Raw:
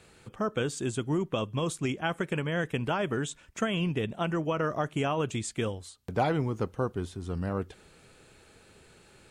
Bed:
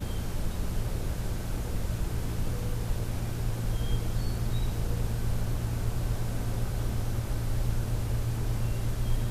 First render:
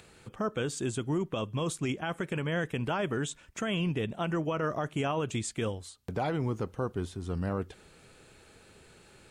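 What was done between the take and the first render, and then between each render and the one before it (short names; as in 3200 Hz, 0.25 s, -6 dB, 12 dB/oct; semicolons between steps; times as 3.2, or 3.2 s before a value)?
limiter -22 dBFS, peak gain reduction 6.5 dB; upward compressor, threshold -54 dBFS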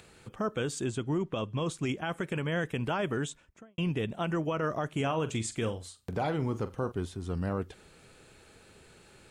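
0.84–1.78 air absorption 50 m; 3.17–3.78 studio fade out; 4.88–6.92 flutter echo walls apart 7.6 m, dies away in 0.21 s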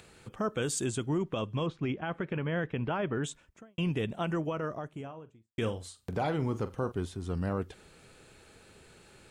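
0.62–1.06 high shelf 7100 Hz +11.5 dB; 1.66–3.24 air absorption 290 m; 4.07–5.58 studio fade out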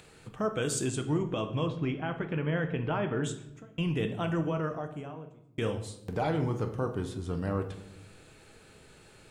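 shoebox room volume 220 m³, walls mixed, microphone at 0.5 m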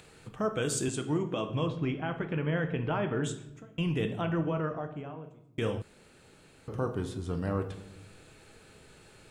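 0.88–1.49 HPF 140 Hz; 4.21–5.24 LPF 3500 Hz; 5.82–6.68 room tone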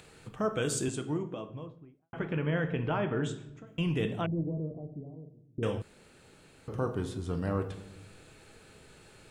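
0.6–2.13 studio fade out; 3.04–3.67 air absorption 74 m; 4.26–5.63 Gaussian blur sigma 18 samples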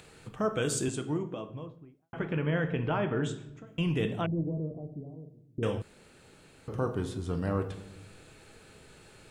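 gain +1 dB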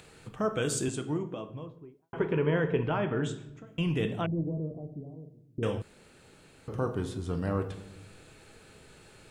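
1.75–2.83 small resonant body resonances 410/960 Hz, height 12 dB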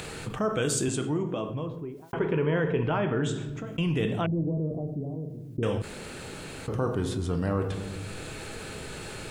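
fast leveller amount 50%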